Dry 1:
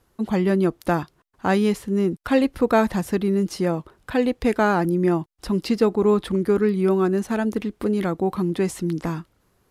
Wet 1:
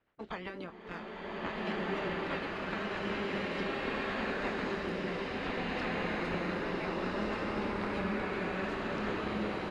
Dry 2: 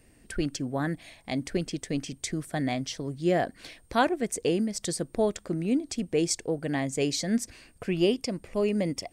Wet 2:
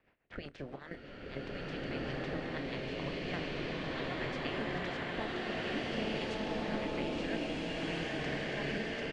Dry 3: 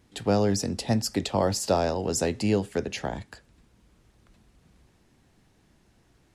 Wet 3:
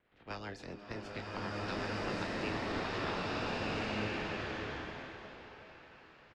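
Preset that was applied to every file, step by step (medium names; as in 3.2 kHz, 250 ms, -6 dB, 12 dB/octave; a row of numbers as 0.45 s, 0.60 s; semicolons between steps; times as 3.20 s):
spectral peaks clipped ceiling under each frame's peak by 25 dB; level-controlled noise filter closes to 2.4 kHz, open at -19.5 dBFS; trance gate "x.xxx.xx.x.xxxxx" 99 bpm -12 dB; in parallel at -10 dB: word length cut 6-bit, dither none; on the sum: compression 6:1, threshold -30 dBFS; low-pass 3.1 kHz 12 dB/octave; doubling 28 ms -10.5 dB; on a send: repeats whose band climbs or falls 325 ms, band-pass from 290 Hz, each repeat 0.7 oct, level -9 dB; on the sum: rotary cabinet horn 8 Hz; swelling reverb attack 1670 ms, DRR -8.5 dB; trim -7.5 dB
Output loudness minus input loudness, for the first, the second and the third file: -13.5 LU, -8.0 LU, -12.0 LU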